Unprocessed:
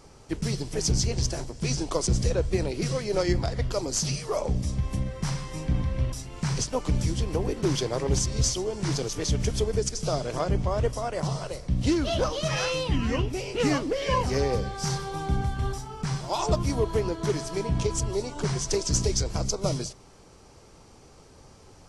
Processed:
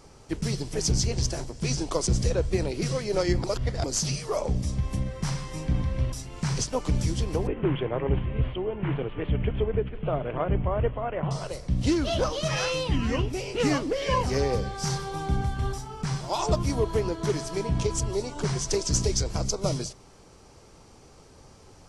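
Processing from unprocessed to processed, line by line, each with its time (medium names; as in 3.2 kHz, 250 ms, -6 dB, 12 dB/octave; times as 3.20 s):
3.44–3.84 s: reverse
7.47–11.31 s: steep low-pass 3.1 kHz 72 dB/octave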